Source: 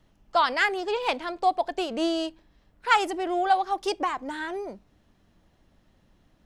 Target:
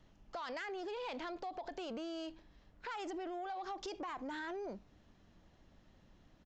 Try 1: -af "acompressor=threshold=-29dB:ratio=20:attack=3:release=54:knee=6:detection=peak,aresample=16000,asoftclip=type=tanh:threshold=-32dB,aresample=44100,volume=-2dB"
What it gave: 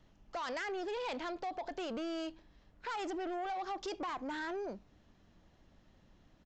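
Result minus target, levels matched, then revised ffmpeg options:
downward compressor: peak gain reduction −6.5 dB
-af "acompressor=threshold=-36dB:ratio=20:attack=3:release=54:knee=6:detection=peak,aresample=16000,asoftclip=type=tanh:threshold=-32dB,aresample=44100,volume=-2dB"

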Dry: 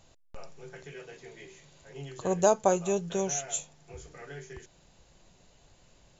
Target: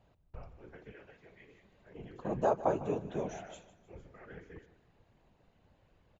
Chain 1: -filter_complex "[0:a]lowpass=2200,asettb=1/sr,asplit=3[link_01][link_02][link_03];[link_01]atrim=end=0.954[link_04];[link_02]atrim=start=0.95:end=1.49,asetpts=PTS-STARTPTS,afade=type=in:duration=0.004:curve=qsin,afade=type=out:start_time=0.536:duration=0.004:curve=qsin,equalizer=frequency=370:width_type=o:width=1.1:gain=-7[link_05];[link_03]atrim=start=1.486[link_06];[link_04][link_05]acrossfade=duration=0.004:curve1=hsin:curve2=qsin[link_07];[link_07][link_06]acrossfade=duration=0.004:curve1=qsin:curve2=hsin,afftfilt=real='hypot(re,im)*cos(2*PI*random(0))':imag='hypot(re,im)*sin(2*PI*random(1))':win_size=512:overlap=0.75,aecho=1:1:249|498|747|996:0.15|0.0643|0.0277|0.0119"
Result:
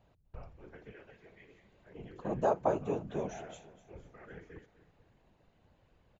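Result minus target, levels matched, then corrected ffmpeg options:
echo 95 ms late
-filter_complex "[0:a]lowpass=2200,asettb=1/sr,asplit=3[link_01][link_02][link_03];[link_01]atrim=end=0.954[link_04];[link_02]atrim=start=0.95:end=1.49,asetpts=PTS-STARTPTS,afade=type=in:duration=0.004:curve=qsin,afade=type=out:start_time=0.536:duration=0.004:curve=qsin,equalizer=frequency=370:width_type=o:width=1.1:gain=-7[link_05];[link_03]atrim=start=1.486[link_06];[link_04][link_05]acrossfade=duration=0.004:curve1=hsin:curve2=qsin[link_07];[link_07][link_06]acrossfade=duration=0.004:curve1=qsin:curve2=hsin,afftfilt=real='hypot(re,im)*cos(2*PI*random(0))':imag='hypot(re,im)*sin(2*PI*random(1))':win_size=512:overlap=0.75,aecho=1:1:154|308|462|616:0.15|0.0643|0.0277|0.0119"

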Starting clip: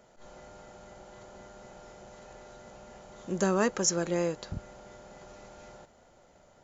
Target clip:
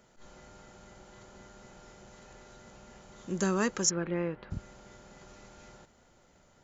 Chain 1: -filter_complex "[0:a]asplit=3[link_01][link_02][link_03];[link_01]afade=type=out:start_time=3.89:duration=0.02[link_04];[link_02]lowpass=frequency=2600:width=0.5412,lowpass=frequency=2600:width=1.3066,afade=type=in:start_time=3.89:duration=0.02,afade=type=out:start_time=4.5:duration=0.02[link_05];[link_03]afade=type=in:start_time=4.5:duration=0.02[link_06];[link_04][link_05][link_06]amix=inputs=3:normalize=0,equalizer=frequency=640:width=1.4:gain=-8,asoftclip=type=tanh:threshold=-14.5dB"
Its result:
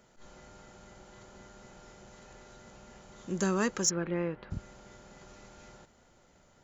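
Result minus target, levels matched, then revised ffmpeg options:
soft clipping: distortion +20 dB
-filter_complex "[0:a]asplit=3[link_01][link_02][link_03];[link_01]afade=type=out:start_time=3.89:duration=0.02[link_04];[link_02]lowpass=frequency=2600:width=0.5412,lowpass=frequency=2600:width=1.3066,afade=type=in:start_time=3.89:duration=0.02,afade=type=out:start_time=4.5:duration=0.02[link_05];[link_03]afade=type=in:start_time=4.5:duration=0.02[link_06];[link_04][link_05][link_06]amix=inputs=3:normalize=0,equalizer=frequency=640:width=1.4:gain=-8,asoftclip=type=tanh:threshold=-3.5dB"

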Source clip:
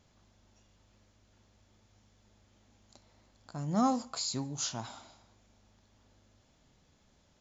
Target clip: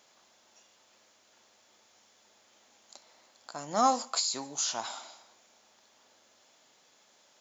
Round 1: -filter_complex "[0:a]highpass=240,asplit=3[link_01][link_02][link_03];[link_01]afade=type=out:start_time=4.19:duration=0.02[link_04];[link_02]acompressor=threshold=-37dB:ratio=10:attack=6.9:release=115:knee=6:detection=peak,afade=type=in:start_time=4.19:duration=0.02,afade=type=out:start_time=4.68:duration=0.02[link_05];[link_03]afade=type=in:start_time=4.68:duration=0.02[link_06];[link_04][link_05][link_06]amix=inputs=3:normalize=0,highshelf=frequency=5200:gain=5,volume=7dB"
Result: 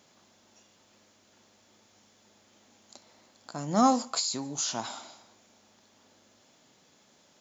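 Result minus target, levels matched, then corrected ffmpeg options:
250 Hz band +8.5 dB
-filter_complex "[0:a]highpass=520,asplit=3[link_01][link_02][link_03];[link_01]afade=type=out:start_time=4.19:duration=0.02[link_04];[link_02]acompressor=threshold=-37dB:ratio=10:attack=6.9:release=115:knee=6:detection=peak,afade=type=in:start_time=4.19:duration=0.02,afade=type=out:start_time=4.68:duration=0.02[link_05];[link_03]afade=type=in:start_time=4.68:duration=0.02[link_06];[link_04][link_05][link_06]amix=inputs=3:normalize=0,highshelf=frequency=5200:gain=5,volume=7dB"

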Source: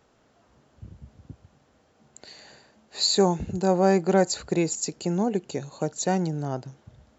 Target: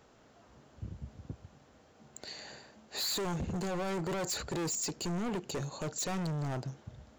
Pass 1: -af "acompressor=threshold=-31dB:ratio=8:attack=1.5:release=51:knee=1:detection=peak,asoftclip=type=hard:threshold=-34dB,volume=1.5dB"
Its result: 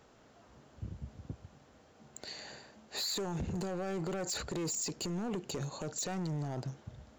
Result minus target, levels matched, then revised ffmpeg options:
downward compressor: peak gain reduction +9 dB
-af "acompressor=threshold=-21dB:ratio=8:attack=1.5:release=51:knee=1:detection=peak,asoftclip=type=hard:threshold=-34dB,volume=1.5dB"

